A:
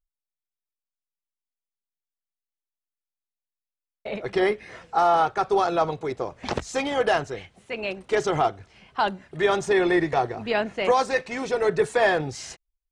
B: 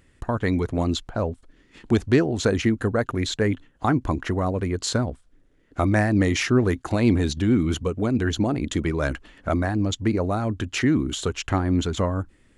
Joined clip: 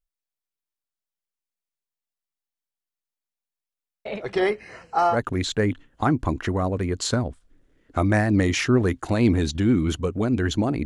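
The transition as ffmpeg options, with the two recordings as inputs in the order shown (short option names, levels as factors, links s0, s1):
-filter_complex "[0:a]asettb=1/sr,asplit=3[s0][s1][s2];[s0]atrim=end=4.504[s3];[s1]atrim=start=4.5:end=5.18,asetpts=PTS-STARTPTS,afade=t=in:d=0.004:c=qsin,afade=t=out:st=0.676:d=0.004:c=qsin,asuperstop=centerf=3500:order=20:qfactor=4.8[s4];[s2]atrim=start=5.176[s5];[s3][s4]acrossfade=d=0.004:c1=hsin:c2=qsin[s6];[s6][s5]acrossfade=d=0.004:c1=qsin:c2=hsin,apad=whole_dur=10.85,atrim=end=10.85,atrim=end=5.18,asetpts=PTS-STARTPTS[s7];[1:a]atrim=start=2.9:end=8.67,asetpts=PTS-STARTPTS[s8];[s7][s8]acrossfade=d=0.1:c1=tri:c2=tri"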